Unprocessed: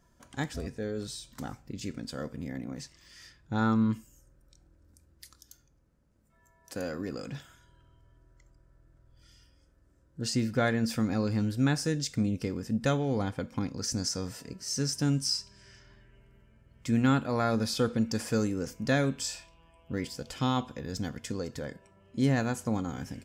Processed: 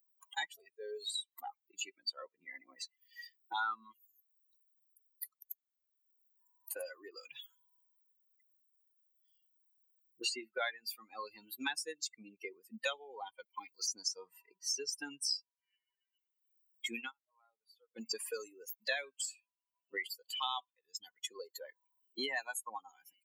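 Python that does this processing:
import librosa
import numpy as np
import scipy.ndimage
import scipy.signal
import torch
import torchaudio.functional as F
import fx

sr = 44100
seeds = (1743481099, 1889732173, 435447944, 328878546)

y = fx.edit(x, sr, fx.fade_down_up(start_s=16.98, length_s=1.07, db=-23.5, fade_s=0.14), tone=tone)
y = fx.bin_expand(y, sr, power=3.0)
y = scipy.signal.sosfilt(scipy.signal.butter(4, 640.0, 'highpass', fs=sr, output='sos'), y)
y = fx.band_squash(y, sr, depth_pct=100)
y = y * 10.0 ** (7.5 / 20.0)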